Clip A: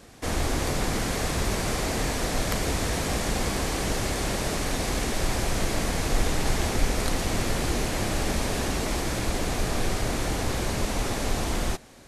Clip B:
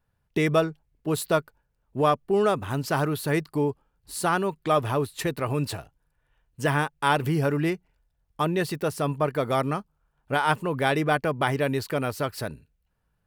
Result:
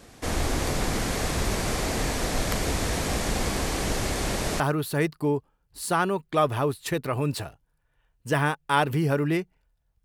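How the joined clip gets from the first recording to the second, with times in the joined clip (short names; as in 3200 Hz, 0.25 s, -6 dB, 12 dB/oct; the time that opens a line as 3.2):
clip A
4.6 switch to clip B from 2.93 s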